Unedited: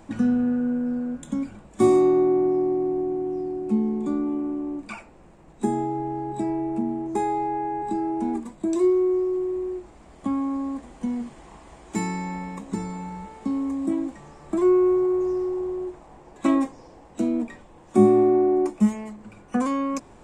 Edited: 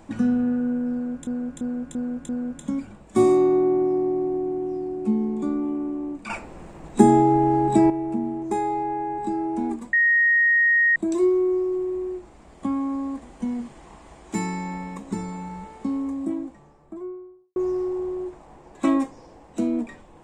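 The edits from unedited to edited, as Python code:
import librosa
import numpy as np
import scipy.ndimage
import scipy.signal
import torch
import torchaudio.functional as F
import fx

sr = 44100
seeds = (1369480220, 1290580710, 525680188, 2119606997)

y = fx.studio_fade_out(x, sr, start_s=13.27, length_s=1.9)
y = fx.edit(y, sr, fx.repeat(start_s=0.93, length_s=0.34, count=5),
    fx.clip_gain(start_s=4.94, length_s=1.6, db=10.0),
    fx.insert_tone(at_s=8.57, length_s=1.03, hz=1870.0, db=-15.0), tone=tone)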